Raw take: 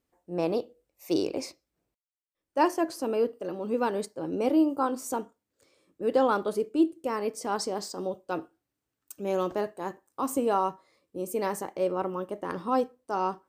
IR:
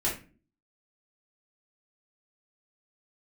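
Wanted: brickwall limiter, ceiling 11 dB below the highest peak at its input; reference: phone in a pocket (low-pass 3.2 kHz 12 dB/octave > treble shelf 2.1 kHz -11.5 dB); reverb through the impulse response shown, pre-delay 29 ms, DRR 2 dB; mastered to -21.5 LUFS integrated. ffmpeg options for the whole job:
-filter_complex "[0:a]alimiter=limit=0.0708:level=0:latency=1,asplit=2[s0][s1];[1:a]atrim=start_sample=2205,adelay=29[s2];[s1][s2]afir=irnorm=-1:irlink=0,volume=0.316[s3];[s0][s3]amix=inputs=2:normalize=0,lowpass=3200,highshelf=f=2100:g=-11.5,volume=3.35"

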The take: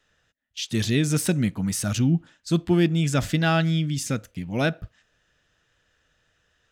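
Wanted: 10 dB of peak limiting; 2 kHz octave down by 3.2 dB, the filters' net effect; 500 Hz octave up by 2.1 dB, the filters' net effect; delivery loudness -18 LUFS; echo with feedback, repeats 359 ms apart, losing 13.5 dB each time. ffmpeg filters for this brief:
-af "equalizer=f=500:t=o:g=3.5,equalizer=f=2000:t=o:g=-5,alimiter=limit=0.119:level=0:latency=1,aecho=1:1:359|718:0.211|0.0444,volume=2.99"

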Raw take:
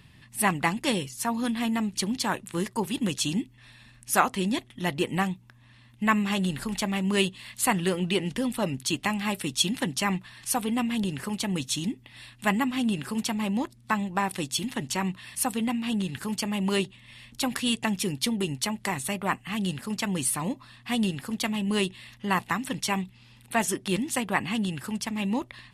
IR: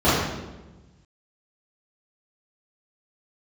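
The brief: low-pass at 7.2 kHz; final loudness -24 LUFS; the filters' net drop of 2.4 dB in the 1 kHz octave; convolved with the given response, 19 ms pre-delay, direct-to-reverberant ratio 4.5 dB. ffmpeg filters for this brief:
-filter_complex "[0:a]lowpass=7200,equalizer=f=1000:t=o:g=-3,asplit=2[s0][s1];[1:a]atrim=start_sample=2205,adelay=19[s2];[s1][s2]afir=irnorm=-1:irlink=0,volume=0.0447[s3];[s0][s3]amix=inputs=2:normalize=0,volume=1.33"

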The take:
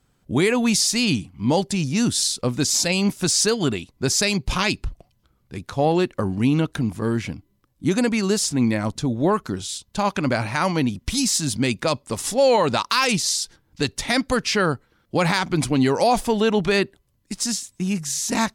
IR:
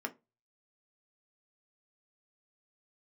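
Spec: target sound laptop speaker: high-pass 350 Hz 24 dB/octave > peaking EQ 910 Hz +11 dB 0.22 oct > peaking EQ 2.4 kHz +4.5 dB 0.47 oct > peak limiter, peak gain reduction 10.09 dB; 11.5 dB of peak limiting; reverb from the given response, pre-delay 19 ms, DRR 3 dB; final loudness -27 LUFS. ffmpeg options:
-filter_complex "[0:a]alimiter=limit=0.106:level=0:latency=1,asplit=2[s0][s1];[1:a]atrim=start_sample=2205,adelay=19[s2];[s1][s2]afir=irnorm=-1:irlink=0,volume=0.562[s3];[s0][s3]amix=inputs=2:normalize=0,highpass=f=350:w=0.5412,highpass=f=350:w=1.3066,equalizer=f=910:t=o:w=0.22:g=11,equalizer=f=2400:t=o:w=0.47:g=4.5,volume=1.58,alimiter=limit=0.15:level=0:latency=1"

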